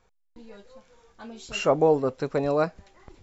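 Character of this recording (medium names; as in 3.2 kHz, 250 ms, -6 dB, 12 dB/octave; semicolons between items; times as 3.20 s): noise floor -69 dBFS; spectral tilt -5.0 dB/octave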